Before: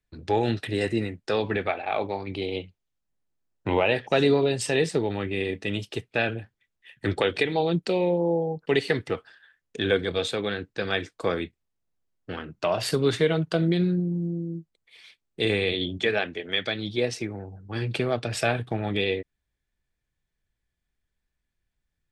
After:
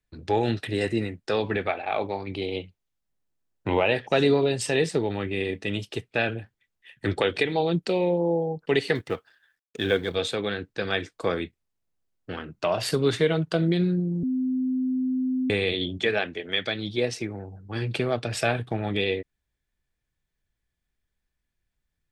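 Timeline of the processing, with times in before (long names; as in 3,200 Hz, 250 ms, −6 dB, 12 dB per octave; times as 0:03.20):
0:08.95–0:10.15: mu-law and A-law mismatch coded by A
0:14.23–0:15.50: beep over 257 Hz −22.5 dBFS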